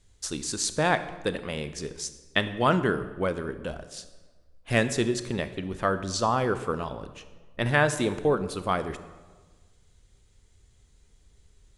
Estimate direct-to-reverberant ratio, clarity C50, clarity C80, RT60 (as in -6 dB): 11.0 dB, 12.5 dB, 14.5 dB, 1.4 s